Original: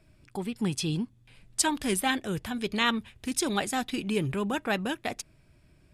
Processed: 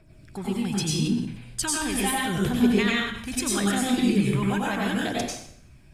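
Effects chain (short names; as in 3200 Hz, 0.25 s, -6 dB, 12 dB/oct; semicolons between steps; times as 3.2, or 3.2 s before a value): compressor, threshold -27 dBFS, peak gain reduction 7.5 dB; phaser 0.77 Hz, delay 1.3 ms, feedback 52%; plate-style reverb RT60 0.64 s, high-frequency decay 0.95×, pre-delay 80 ms, DRR -4 dB; 0.93–3.41 sustainer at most 72 dB/s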